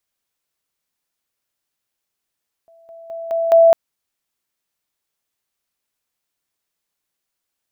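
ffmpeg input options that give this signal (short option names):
-f lavfi -i "aevalsrc='pow(10,(-46.5+10*floor(t/0.21))/20)*sin(2*PI*664*t)':d=1.05:s=44100"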